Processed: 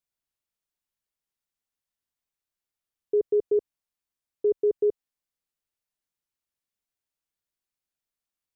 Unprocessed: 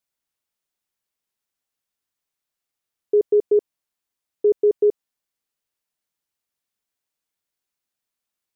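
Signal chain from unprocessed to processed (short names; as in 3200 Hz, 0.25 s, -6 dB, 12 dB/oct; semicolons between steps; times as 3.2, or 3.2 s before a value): low shelf 100 Hz +9 dB; gain -6.5 dB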